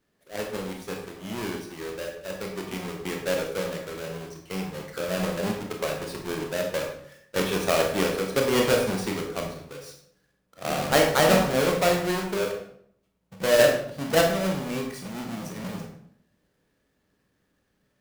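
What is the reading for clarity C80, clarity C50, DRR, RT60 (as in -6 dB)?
8.0 dB, 5.0 dB, 1.0 dB, 0.65 s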